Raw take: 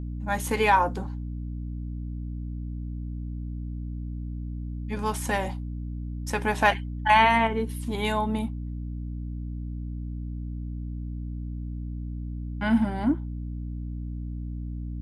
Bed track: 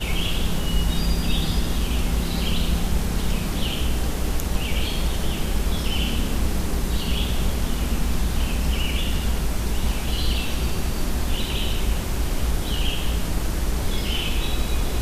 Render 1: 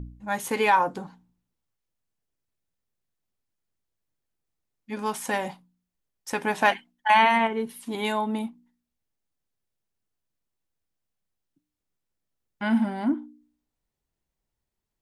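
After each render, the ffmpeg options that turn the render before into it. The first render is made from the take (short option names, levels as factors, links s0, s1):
-af "bandreject=f=60:t=h:w=4,bandreject=f=120:t=h:w=4,bandreject=f=180:t=h:w=4,bandreject=f=240:t=h:w=4,bandreject=f=300:t=h:w=4"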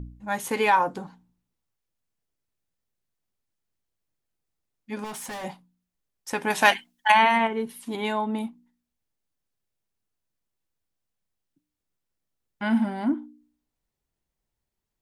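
-filter_complex "[0:a]asettb=1/sr,asplit=3[s0][s1][s2];[s0]atrim=end=5.044[s3];[s1]atrim=start=5.04:end=5.44,asetpts=PTS-STARTPTS,afade=t=in:d=0.004:c=qsin,afade=t=out:st=0.396:d=0.004:c=qsin,volume=47.3,asoftclip=hard,volume=0.0211[s4];[s2]atrim=start=5.436[s5];[s3][s4]acrossfade=d=0.004:c1=hsin:c2=qsin[s6];[s6][s5]acrossfade=d=0.004:c1=qsin:c2=hsin,asettb=1/sr,asplit=3[s7][s8][s9];[s7]atrim=end=6.504[s10];[s8]atrim=start=6.5:end=7.12,asetpts=PTS-STARTPTS,afade=t=in:d=0.004:c=qsin,afade=t=out:st=0.616:d=0.004:c=qsin,highshelf=f=2400:g=11[s11];[s9]atrim=start=7.116[s12];[s10][s11]acrossfade=d=0.004:c1=hsin:c2=qsin[s13];[s13][s12]acrossfade=d=0.004:c1=qsin:c2=hsin,asettb=1/sr,asplit=3[s14][s15][s16];[s14]atrim=end=7.964[s17];[s15]atrim=start=7.96:end=8.38,asetpts=PTS-STARTPTS,afade=t=in:d=0.004:c=qsin,afade=t=out:st=0.416:d=0.004:c=qsin,lowpass=f=3900:p=1[s18];[s16]atrim=start=8.376[s19];[s17][s18]acrossfade=d=0.004:c1=hsin:c2=qsin[s20];[s20][s19]acrossfade=d=0.004:c1=qsin:c2=hsin"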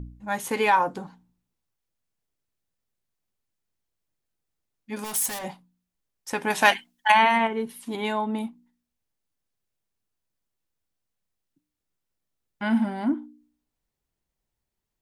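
-filter_complex "[0:a]asettb=1/sr,asplit=3[s0][s1][s2];[s0]atrim=end=4.964[s3];[s1]atrim=start=4.96:end=5.39,asetpts=PTS-STARTPTS,afade=t=in:d=0.004:c=qsin,afade=t=out:st=0.426:d=0.004:c=qsin,aemphasis=mode=production:type=75fm[s4];[s2]atrim=start=5.386[s5];[s3][s4]acrossfade=d=0.004:c1=hsin:c2=qsin[s6];[s6][s5]acrossfade=d=0.004:c1=qsin:c2=hsin"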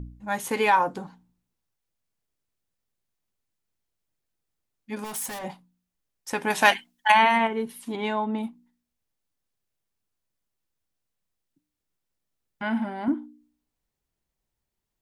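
-filter_complex "[0:a]asettb=1/sr,asplit=3[s0][s1][s2];[s0]atrim=end=4.954[s3];[s1]atrim=start=4.95:end=5.5,asetpts=PTS-STARTPTS,afade=t=in:d=0.004:c=qsin,afade=t=out:st=0.546:d=0.004:c=qsin,highshelf=f=3100:g=-7.5[s4];[s2]atrim=start=5.496[s5];[s3][s4]acrossfade=d=0.004:c1=hsin:c2=qsin[s6];[s6][s5]acrossfade=d=0.004:c1=qsin:c2=hsin,asplit=3[s7][s8][s9];[s7]afade=t=out:st=7.91:d=0.02[s10];[s8]adynamicsmooth=sensitivity=1:basefreq=5400,afade=t=in:st=7.91:d=0.02,afade=t=out:st=8.42:d=0.02[s11];[s9]afade=t=in:st=8.42:d=0.02[s12];[s10][s11][s12]amix=inputs=3:normalize=0,asettb=1/sr,asplit=3[s13][s14][s15];[s13]atrim=end=12.624[s16];[s14]atrim=start=12.62:end=13.08,asetpts=PTS-STARTPTS,afade=t=in:d=0.004:c=qsin,afade=t=out:st=0.456:d=0.004:c=qsin,bass=f=250:g=-8,treble=f=4000:g=-9[s17];[s15]atrim=start=13.076[s18];[s16][s17]acrossfade=d=0.004:c1=hsin:c2=qsin[s19];[s19][s18]acrossfade=d=0.004:c1=qsin:c2=hsin"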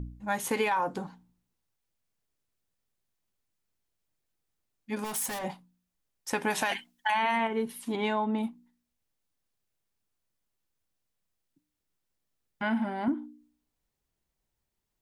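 -af "alimiter=limit=0.188:level=0:latency=1:release=18,acompressor=threshold=0.0631:ratio=6"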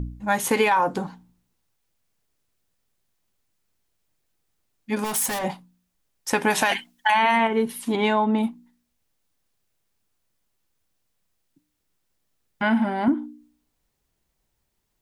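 -af "volume=2.51"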